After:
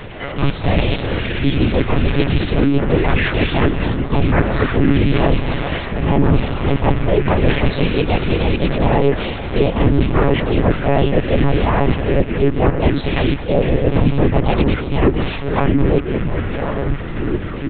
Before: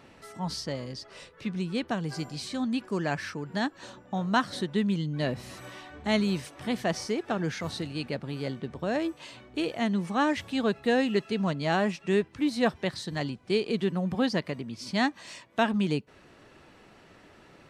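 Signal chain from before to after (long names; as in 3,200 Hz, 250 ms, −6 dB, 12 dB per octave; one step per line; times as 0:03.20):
loose part that buzzes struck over −38 dBFS, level −29 dBFS
treble cut that deepens with the level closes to 1,400 Hz, closed at −22.5 dBFS
parametric band 1,000 Hz −7.5 dB 0.76 octaves
reversed playback
downward compressor 12 to 1, threshold −35 dBFS, peak gain reduction 15 dB
reversed playback
pitch-shifted copies added −3 semitones −15 dB, +3 semitones −2 dB, +7 semitones −1 dB
delay with pitch and tempo change per echo 97 ms, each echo −6 semitones, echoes 3, each echo −6 dB
high-frequency loss of the air 180 metres
repeating echo 211 ms, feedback 16%, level −12.5 dB
one-pitch LPC vocoder at 8 kHz 140 Hz
boost into a limiter +21 dB
level −1 dB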